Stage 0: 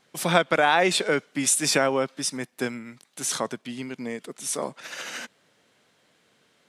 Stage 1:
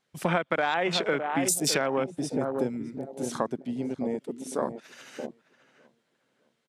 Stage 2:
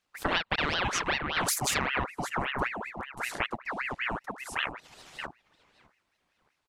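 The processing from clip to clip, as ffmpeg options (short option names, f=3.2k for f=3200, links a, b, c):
-filter_complex "[0:a]asplit=2[a][b];[b]adelay=611,lowpass=f=1k:p=1,volume=-8dB,asplit=2[c][d];[d]adelay=611,lowpass=f=1k:p=1,volume=0.36,asplit=2[e][f];[f]adelay=611,lowpass=f=1k:p=1,volume=0.36,asplit=2[g][h];[h]adelay=611,lowpass=f=1k:p=1,volume=0.36[i];[a][c][e][g][i]amix=inputs=5:normalize=0,afwtdn=0.0316,acompressor=threshold=-26dB:ratio=6,volume=3.5dB"
-af "aeval=exprs='val(0)*sin(2*PI*1400*n/s+1400*0.7/5.2*sin(2*PI*5.2*n/s))':c=same"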